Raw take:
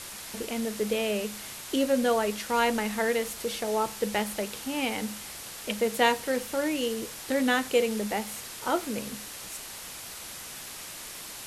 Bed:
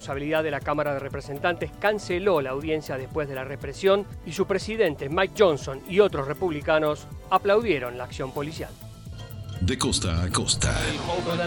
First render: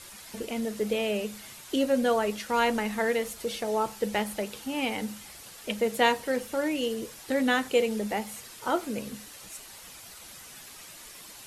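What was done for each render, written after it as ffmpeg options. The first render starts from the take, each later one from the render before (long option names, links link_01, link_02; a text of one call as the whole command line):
ffmpeg -i in.wav -af "afftdn=noise_reduction=8:noise_floor=-42" out.wav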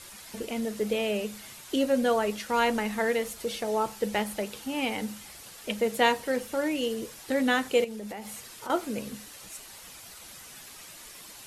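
ffmpeg -i in.wav -filter_complex "[0:a]asettb=1/sr,asplit=3[link_01][link_02][link_03];[link_01]atrim=end=7.844[link_04];[link_02]atrim=start=7.84:end=8.7,asetpts=PTS-STARTPTS,afade=type=in:duration=0.004:curve=qsin,afade=type=out:start_time=0.856:duration=0.004:curve=qsin,acompressor=threshold=-34dB:ratio=10:attack=3.2:release=140:knee=1:detection=peak[link_05];[link_03]atrim=start=8.696[link_06];[link_04][link_05]acrossfade=duration=0.004:curve1=hsin:curve2=qsin[link_07];[link_07][link_06]acrossfade=duration=0.004:curve1=qsin:curve2=hsin" out.wav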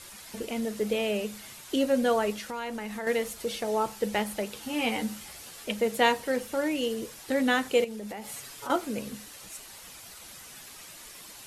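ffmpeg -i in.wav -filter_complex "[0:a]asettb=1/sr,asplit=3[link_01][link_02][link_03];[link_01]atrim=end=2.324[link_04];[link_02]atrim=start=2.32:end=3.07,asetpts=PTS-STARTPTS,afade=type=in:duration=0.004:curve=qsin,afade=type=out:start_time=0.746:duration=0.004:curve=qsin,acompressor=threshold=-34dB:ratio=3:attack=3.2:release=140:knee=1:detection=peak[link_05];[link_03]atrim=start=3.066[link_06];[link_04][link_05]acrossfade=duration=0.004:curve1=hsin:curve2=qsin[link_07];[link_07][link_06]acrossfade=duration=0.004:curve1=qsin:curve2=hsin,asettb=1/sr,asplit=3[link_08][link_09][link_10];[link_08]atrim=end=4.604[link_11];[link_09]atrim=start=4.6:end=5.64,asetpts=PTS-STARTPTS,afade=type=in:duration=0.004:curve=qsin,afade=type=out:start_time=1.036:duration=0.004:curve=qsin,asplit=2[link_12][link_13];[link_13]adelay=13,volume=-3.5dB[link_14];[link_12][link_14]amix=inputs=2:normalize=0,atrim=end_sample=45864[link_15];[link_10]atrim=start=5.636[link_16];[link_11][link_15]acrossfade=duration=0.004:curve1=hsin:curve2=qsin[link_17];[link_17][link_16]acrossfade=duration=0.004:curve1=qsin:curve2=hsin,asettb=1/sr,asplit=3[link_18][link_19][link_20];[link_18]atrim=end=8.234[link_21];[link_19]atrim=start=8.23:end=8.76,asetpts=PTS-STARTPTS,afade=type=in:duration=0.004:curve=qsin,afade=type=out:start_time=0.526:duration=0.004:curve=qsin,aecho=1:1:7.1:0.65,atrim=end_sample=23373[link_22];[link_20]atrim=start=8.756[link_23];[link_21][link_22]acrossfade=duration=0.004:curve1=hsin:curve2=qsin[link_24];[link_24][link_23]acrossfade=duration=0.004:curve1=qsin:curve2=hsin" out.wav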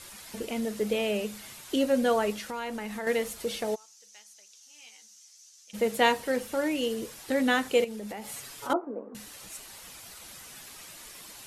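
ffmpeg -i in.wav -filter_complex "[0:a]asplit=3[link_01][link_02][link_03];[link_01]afade=type=out:start_time=3.74:duration=0.02[link_04];[link_02]bandpass=frequency=6100:width_type=q:width=5.3,afade=type=in:start_time=3.74:duration=0.02,afade=type=out:start_time=5.73:duration=0.02[link_05];[link_03]afade=type=in:start_time=5.73:duration=0.02[link_06];[link_04][link_05][link_06]amix=inputs=3:normalize=0,asettb=1/sr,asplit=3[link_07][link_08][link_09];[link_07]atrim=end=8.734[link_10];[link_08]atrim=start=8.73:end=9.15,asetpts=PTS-STARTPTS,afade=type=in:duration=0.004:curve=qsin,afade=type=out:start_time=0.416:duration=0.004:curve=qsin,asuperpass=centerf=560:order=8:qfactor=0.61[link_11];[link_09]atrim=start=9.146[link_12];[link_10][link_11]acrossfade=duration=0.004:curve1=hsin:curve2=qsin[link_13];[link_13][link_12]acrossfade=duration=0.004:curve1=qsin:curve2=hsin" out.wav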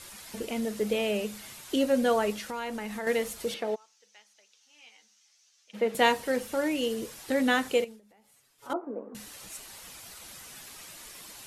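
ffmpeg -i in.wav -filter_complex "[0:a]asettb=1/sr,asplit=3[link_01][link_02][link_03];[link_01]atrim=end=3.544[link_04];[link_02]atrim=start=3.54:end=5.95,asetpts=PTS-STARTPTS,afade=type=in:duration=0.004:curve=qsin,afade=type=out:start_time=2.406:duration=0.004:curve=qsin,acrossover=split=180 3900:gain=0.141 1 0.178[link_05][link_06][link_07];[link_05][link_06][link_07]amix=inputs=3:normalize=0[link_08];[link_03]atrim=start=5.946[link_09];[link_04][link_08]acrossfade=duration=0.004:curve1=hsin:curve2=qsin[link_10];[link_10][link_09]acrossfade=duration=0.004:curve1=qsin:curve2=hsin,asplit=3[link_11][link_12][link_13];[link_11]atrim=end=8.01,asetpts=PTS-STARTPTS,afade=type=out:start_time=7.71:duration=0.3:silence=0.0707946[link_14];[link_12]atrim=start=8.01:end=8.58,asetpts=PTS-STARTPTS,volume=-23dB[link_15];[link_13]atrim=start=8.58,asetpts=PTS-STARTPTS,afade=type=in:duration=0.3:silence=0.0707946[link_16];[link_14][link_15][link_16]concat=n=3:v=0:a=1" out.wav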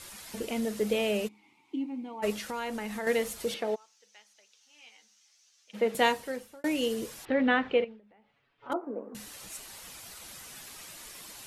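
ffmpeg -i in.wav -filter_complex "[0:a]asplit=3[link_01][link_02][link_03];[link_01]afade=type=out:start_time=1.27:duration=0.02[link_04];[link_02]asplit=3[link_05][link_06][link_07];[link_05]bandpass=frequency=300:width_type=q:width=8,volume=0dB[link_08];[link_06]bandpass=frequency=870:width_type=q:width=8,volume=-6dB[link_09];[link_07]bandpass=frequency=2240:width_type=q:width=8,volume=-9dB[link_10];[link_08][link_09][link_10]amix=inputs=3:normalize=0,afade=type=in:start_time=1.27:duration=0.02,afade=type=out:start_time=2.22:duration=0.02[link_11];[link_03]afade=type=in:start_time=2.22:duration=0.02[link_12];[link_04][link_11][link_12]amix=inputs=3:normalize=0,asettb=1/sr,asplit=3[link_13][link_14][link_15];[link_13]atrim=end=7.254[link_16];[link_14]atrim=start=7.25:end=8.72,asetpts=PTS-STARTPTS,afade=type=in:duration=0.004:curve=qsin,afade=type=out:start_time=1.466:duration=0.004:curve=qsin,lowpass=frequency=3000:width=0.5412,lowpass=frequency=3000:width=1.3066[link_17];[link_15]atrim=start=8.716[link_18];[link_16][link_17]acrossfade=duration=0.004:curve1=hsin:curve2=qsin[link_19];[link_19][link_18]acrossfade=duration=0.004:curve1=qsin:curve2=hsin,asplit=2[link_20][link_21];[link_20]atrim=end=6.64,asetpts=PTS-STARTPTS,afade=type=out:start_time=5.9:duration=0.74[link_22];[link_21]atrim=start=6.64,asetpts=PTS-STARTPTS,afade=type=in:duration=0.004:curve=hsin[link_23];[link_22][link_23]concat=n=2:v=0:a=1" out.wav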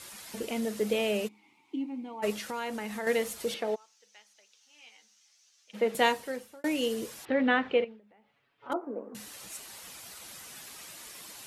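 ffmpeg -i in.wav -af "highpass=frequency=110:poles=1" out.wav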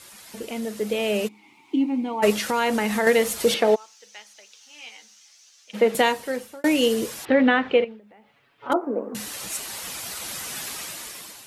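ffmpeg -i in.wav -af "dynaudnorm=framelen=970:gausssize=3:maxgain=15dB,alimiter=limit=-7.5dB:level=0:latency=1:release=401" out.wav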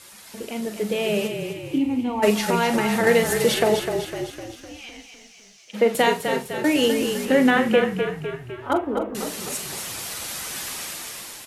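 ffmpeg -i in.wav -filter_complex "[0:a]asplit=2[link_01][link_02];[link_02]adelay=43,volume=-9.5dB[link_03];[link_01][link_03]amix=inputs=2:normalize=0,asplit=8[link_04][link_05][link_06][link_07][link_08][link_09][link_10][link_11];[link_05]adelay=253,afreqshift=-33,volume=-7dB[link_12];[link_06]adelay=506,afreqshift=-66,volume=-12.4dB[link_13];[link_07]adelay=759,afreqshift=-99,volume=-17.7dB[link_14];[link_08]adelay=1012,afreqshift=-132,volume=-23.1dB[link_15];[link_09]adelay=1265,afreqshift=-165,volume=-28.4dB[link_16];[link_10]adelay=1518,afreqshift=-198,volume=-33.8dB[link_17];[link_11]adelay=1771,afreqshift=-231,volume=-39.1dB[link_18];[link_04][link_12][link_13][link_14][link_15][link_16][link_17][link_18]amix=inputs=8:normalize=0" out.wav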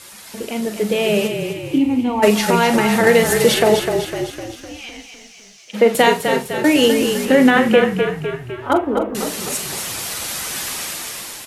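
ffmpeg -i in.wav -af "volume=6dB,alimiter=limit=-2dB:level=0:latency=1" out.wav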